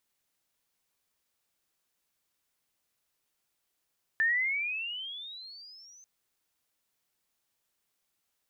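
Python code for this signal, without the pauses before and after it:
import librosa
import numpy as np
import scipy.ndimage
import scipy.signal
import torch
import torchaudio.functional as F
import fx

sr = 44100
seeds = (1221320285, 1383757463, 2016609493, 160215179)

y = fx.riser_tone(sr, length_s=1.84, level_db=-22.5, wave='sine', hz=1760.0, rise_st=22.0, swell_db=-30)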